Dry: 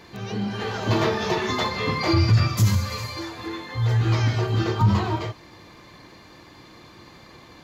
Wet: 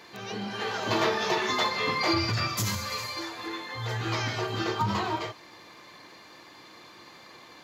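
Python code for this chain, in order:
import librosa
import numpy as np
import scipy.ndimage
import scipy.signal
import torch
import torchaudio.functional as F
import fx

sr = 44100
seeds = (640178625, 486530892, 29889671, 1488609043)

y = fx.highpass(x, sr, hz=530.0, slope=6)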